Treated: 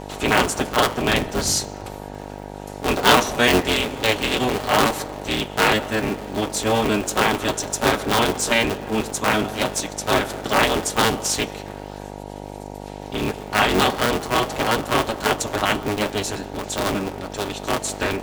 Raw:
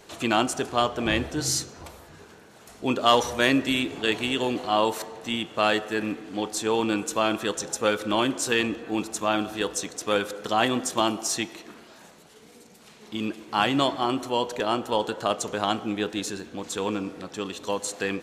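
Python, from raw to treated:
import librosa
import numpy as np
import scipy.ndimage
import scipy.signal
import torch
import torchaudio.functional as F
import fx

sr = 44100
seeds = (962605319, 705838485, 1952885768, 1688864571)

y = fx.cycle_switch(x, sr, every=3, mode='inverted')
y = fx.notch_comb(y, sr, f0_hz=170.0)
y = fx.dmg_buzz(y, sr, base_hz=50.0, harmonics=19, level_db=-41.0, tilt_db=-1, odd_only=False)
y = F.gain(torch.from_numpy(y), 6.0).numpy()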